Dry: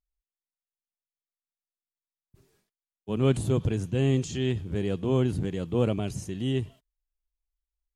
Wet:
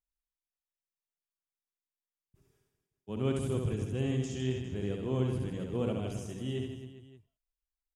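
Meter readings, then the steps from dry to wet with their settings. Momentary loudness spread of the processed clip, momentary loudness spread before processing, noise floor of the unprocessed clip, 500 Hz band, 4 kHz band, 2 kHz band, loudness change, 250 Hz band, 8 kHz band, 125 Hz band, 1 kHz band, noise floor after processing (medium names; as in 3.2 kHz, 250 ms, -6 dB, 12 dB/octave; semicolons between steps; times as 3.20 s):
7 LU, 7 LU, under -85 dBFS, -6.5 dB, -6.5 dB, -6.5 dB, -6.5 dB, -6.5 dB, -6.5 dB, -6.5 dB, -6.5 dB, under -85 dBFS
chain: band-stop 4.2 kHz, Q 6.6; on a send: reverse bouncing-ball echo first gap 70 ms, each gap 1.25×, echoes 5; on the sum: trim -8.5 dB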